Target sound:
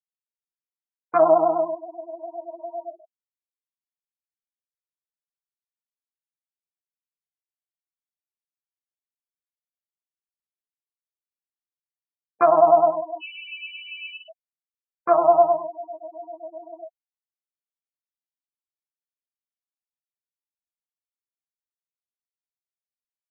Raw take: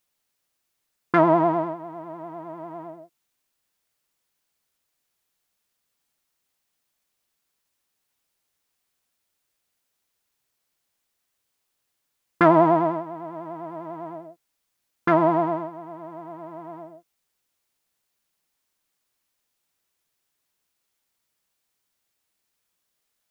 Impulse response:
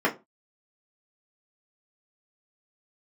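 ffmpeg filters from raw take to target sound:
-filter_complex "[0:a]asplit=2[link_01][link_02];[1:a]atrim=start_sample=2205,afade=type=out:start_time=0.2:duration=0.01,atrim=end_sample=9261,asetrate=31311,aresample=44100[link_03];[link_02][link_03]afir=irnorm=-1:irlink=0,volume=-29.5dB[link_04];[link_01][link_04]amix=inputs=2:normalize=0,asettb=1/sr,asplit=3[link_05][link_06][link_07];[link_05]atrim=end=13.204[link_08];[link_06]atrim=start=13.2:end=14.28,asetpts=PTS-STARTPTS,afade=type=in:duration=0.004:curve=qsin,afade=type=out:start_time=1.076:duration=0.004:curve=qsin,lowpass=frequency=2800:width_type=q:width=0.5098,lowpass=frequency=2800:width_type=q:width=0.6013,lowpass=frequency=2800:width_type=q:width=0.9,lowpass=frequency=2800:width_type=q:width=2.563,afreqshift=-3300[link_09];[link_07]atrim=start=14.276[link_10];[link_08][link_09]acrossfade=duration=0.004:curve1=hsin:curve2=qsin[link_11];[link_11][link_10]acrossfade=duration=0.004:curve1=qsin:curve2=hsin,afftfilt=real='re*gte(hypot(re,im),0.0891)':imag='im*gte(hypot(re,im),0.0891)':win_size=1024:overlap=0.75,asplit=3[link_12][link_13][link_14];[link_12]bandpass=frequency=730:width_type=q:width=8,volume=0dB[link_15];[link_13]bandpass=frequency=1090:width_type=q:width=8,volume=-6dB[link_16];[link_14]bandpass=frequency=2440:width_type=q:width=8,volume=-9dB[link_17];[link_15][link_16][link_17]amix=inputs=3:normalize=0,alimiter=level_in=16.5dB:limit=-1dB:release=50:level=0:latency=1,asplit=2[link_18][link_19];[link_19]adelay=11.3,afreqshift=0.33[link_20];[link_18][link_20]amix=inputs=2:normalize=1,volume=-4dB"

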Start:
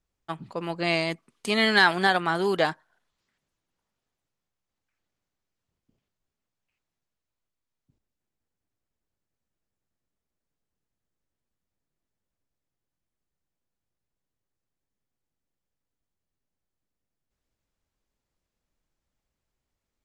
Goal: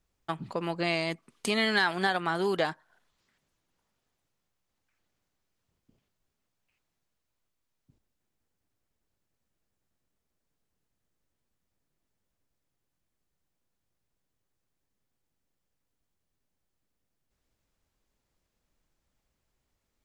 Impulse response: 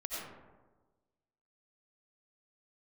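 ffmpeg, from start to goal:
-af "acompressor=threshold=-35dB:ratio=2,volume=4dB"

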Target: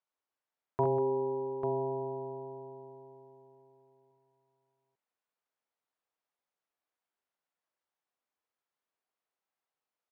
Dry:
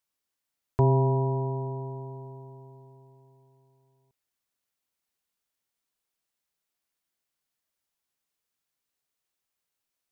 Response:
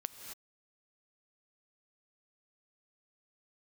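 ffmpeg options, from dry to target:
-filter_complex "[0:a]bandpass=frequency=780:width_type=q:width=0.75:csg=0,asplit=2[link_01][link_02];[link_02]aecho=0:1:43|47|66|194|844:0.2|0.355|0.447|0.282|0.473[link_03];[link_01][link_03]amix=inputs=2:normalize=0,volume=-1dB"

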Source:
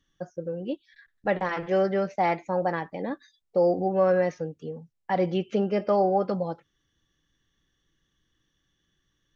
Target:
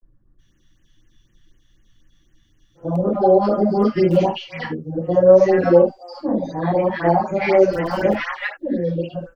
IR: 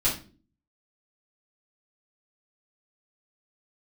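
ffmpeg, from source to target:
-filter_complex "[0:a]areverse,acrossover=split=1100[link_01][link_02];[link_02]adelay=370[link_03];[link_01][link_03]amix=inputs=2:normalize=0[link_04];[1:a]atrim=start_sample=2205,atrim=end_sample=4410[link_05];[link_04][link_05]afir=irnorm=-1:irlink=0,acrossover=split=100|510|2100[link_06][link_07][link_08][link_09];[link_06]aeval=exprs='(mod(50.1*val(0)+1,2)-1)/50.1':channel_layout=same[link_10];[link_10][link_07][link_08][link_09]amix=inputs=4:normalize=0,afftfilt=real='re*(1-between(b*sr/1024,350*pow(4700/350,0.5+0.5*sin(2*PI*4*pts/sr))/1.41,350*pow(4700/350,0.5+0.5*sin(2*PI*4*pts/sr))*1.41))':imag='im*(1-between(b*sr/1024,350*pow(4700/350,0.5+0.5*sin(2*PI*4*pts/sr))/1.41,350*pow(4700/350,0.5+0.5*sin(2*PI*4*pts/sr))*1.41))':win_size=1024:overlap=0.75"

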